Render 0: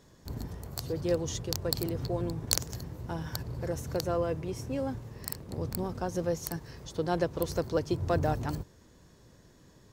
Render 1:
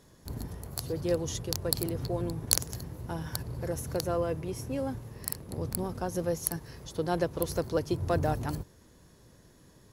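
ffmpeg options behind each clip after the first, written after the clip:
ffmpeg -i in.wav -af "equalizer=frequency=11000:width=4.6:gain=15" out.wav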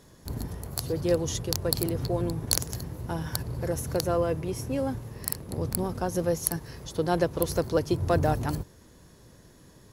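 ffmpeg -i in.wav -af "apsyclip=10dB,volume=-6dB" out.wav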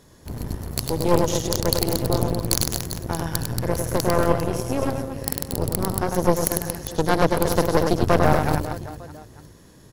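ffmpeg -i in.wav -af "aecho=1:1:100|230|399|618.7|904.3:0.631|0.398|0.251|0.158|0.1,aeval=exprs='0.596*(cos(1*acos(clip(val(0)/0.596,-1,1)))-cos(1*PI/2))+0.119*(cos(8*acos(clip(val(0)/0.596,-1,1)))-cos(8*PI/2))':channel_layout=same,volume=2dB" out.wav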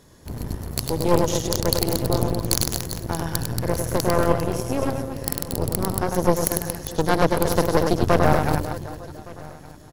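ffmpeg -i in.wav -af "aecho=1:1:1166:0.0794" out.wav

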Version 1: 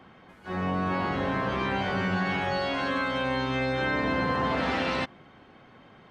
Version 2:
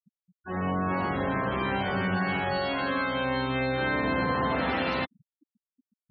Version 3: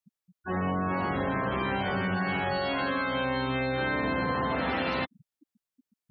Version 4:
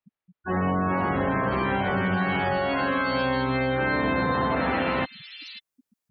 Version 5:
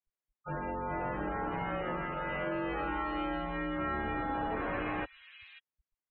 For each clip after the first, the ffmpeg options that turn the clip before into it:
ffmpeg -i in.wav -af "afftfilt=real='re*gte(hypot(re,im),0.02)':imag='im*gte(hypot(re,im),0.02)':win_size=1024:overlap=0.75" out.wav
ffmpeg -i in.wav -af "acompressor=threshold=-31dB:ratio=3,volume=4dB" out.wav
ffmpeg -i in.wav -filter_complex "[0:a]acrossover=split=3300[link_01][link_02];[link_02]adelay=540[link_03];[link_01][link_03]amix=inputs=2:normalize=0,volume=4.5dB" out.wav
ffmpeg -i in.wav -af "highpass=frequency=310:width_type=q:width=0.5412,highpass=frequency=310:width_type=q:width=1.307,lowpass=frequency=3100:width_type=q:width=0.5176,lowpass=frequency=3100:width_type=q:width=0.7071,lowpass=frequency=3100:width_type=q:width=1.932,afreqshift=-220,volume=-8.5dB" out.wav

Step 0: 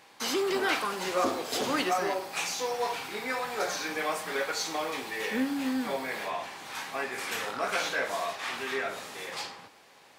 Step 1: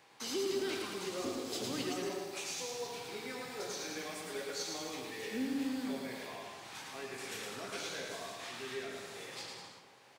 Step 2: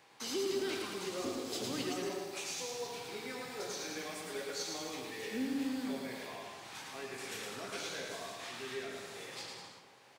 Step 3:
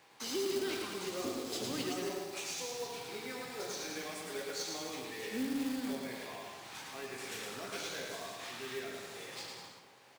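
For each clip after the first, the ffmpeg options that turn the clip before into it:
ffmpeg -i in.wav -filter_complex "[0:a]equalizer=frequency=125:width_type=o:width=0.33:gain=7,equalizer=frequency=400:width_type=o:width=0.33:gain=4,equalizer=frequency=12500:width_type=o:width=0.33:gain=-6,acrossover=split=400|3000[link_01][link_02][link_03];[link_02]acompressor=threshold=-46dB:ratio=2.5[link_04];[link_01][link_04][link_03]amix=inputs=3:normalize=0,aecho=1:1:110|198|268.4|324.7|369.8:0.631|0.398|0.251|0.158|0.1,volume=-7dB" out.wav
ffmpeg -i in.wav -af anull out.wav
ffmpeg -i in.wav -af "acrusher=bits=3:mode=log:mix=0:aa=0.000001" out.wav

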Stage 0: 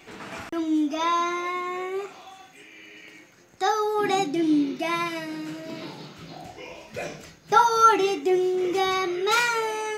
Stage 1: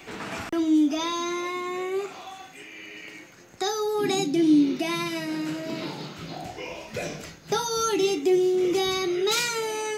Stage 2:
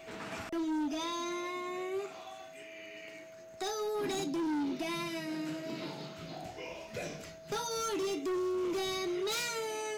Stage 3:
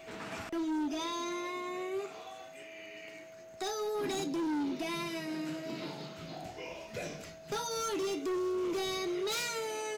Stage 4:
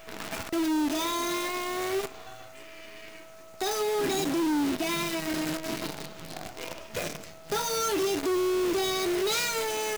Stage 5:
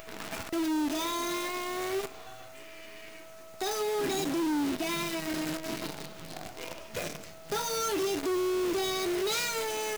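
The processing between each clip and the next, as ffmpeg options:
ffmpeg -i in.wav -filter_complex "[0:a]acrossover=split=390|3000[link_01][link_02][link_03];[link_02]acompressor=threshold=-37dB:ratio=6[link_04];[link_01][link_04][link_03]amix=inputs=3:normalize=0,volume=4.5dB" out.wav
ffmpeg -i in.wav -af "aeval=exprs='val(0)+0.00891*sin(2*PI*650*n/s)':channel_layout=same,asoftclip=type=hard:threshold=-23dB,volume=-8dB" out.wav
ffmpeg -i in.wav -filter_complex "[0:a]asplit=5[link_01][link_02][link_03][link_04][link_05];[link_02]adelay=215,afreqshift=56,volume=-23dB[link_06];[link_03]adelay=430,afreqshift=112,volume=-27.9dB[link_07];[link_04]adelay=645,afreqshift=168,volume=-32.8dB[link_08];[link_05]adelay=860,afreqshift=224,volume=-37.6dB[link_09];[link_01][link_06][link_07][link_08][link_09]amix=inputs=5:normalize=0" out.wav
ffmpeg -i in.wav -af "acrusher=bits=7:dc=4:mix=0:aa=0.000001,volume=6dB" out.wav
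ffmpeg -i in.wav -af "aeval=exprs='val(0)+0.5*0.00422*sgn(val(0))':channel_layout=same,acompressor=mode=upward:threshold=-41dB:ratio=2.5,volume=-3dB" out.wav

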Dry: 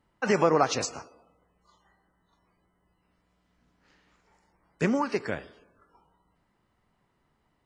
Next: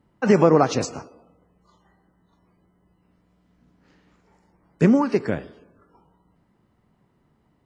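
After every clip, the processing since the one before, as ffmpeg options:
ffmpeg -i in.wav -af "equalizer=frequency=180:width=0.33:gain=11" out.wav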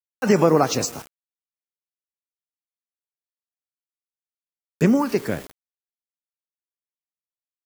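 ffmpeg -i in.wav -af "aeval=exprs='val(0)*gte(abs(val(0)),0.0112)':channel_layout=same,crystalizer=i=2:c=0,volume=-1dB" out.wav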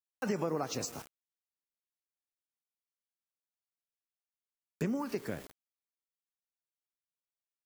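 ffmpeg -i in.wav -af "acompressor=threshold=-26dB:ratio=2.5,volume=-8dB" out.wav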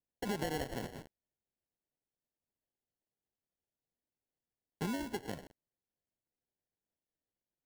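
ffmpeg -i in.wav -af "acrusher=samples=36:mix=1:aa=0.000001,volume=-3.5dB" out.wav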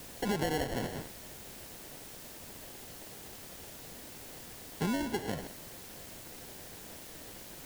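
ffmpeg -i in.wav -af "aeval=exprs='val(0)+0.5*0.00944*sgn(val(0))':channel_layout=same,volume=3dB" out.wav

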